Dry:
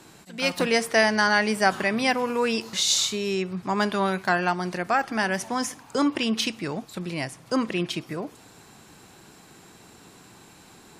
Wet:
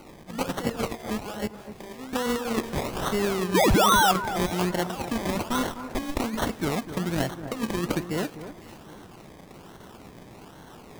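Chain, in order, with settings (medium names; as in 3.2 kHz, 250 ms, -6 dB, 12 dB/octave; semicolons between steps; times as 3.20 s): 5.49–6.20 s: comb filter that takes the minimum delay 0.88 ms; compressor with a negative ratio -27 dBFS, ratio -0.5; 1.47–2.13 s: feedback comb 130 Hz, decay 1 s, harmonics all, mix 90%; 3.54–4.12 s: painted sound fall 700–2500 Hz -19 dBFS; decimation with a swept rate 25×, swing 60% 1.2 Hz; on a send: echo whose repeats swap between lows and highs 252 ms, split 1.7 kHz, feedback 52%, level -11 dB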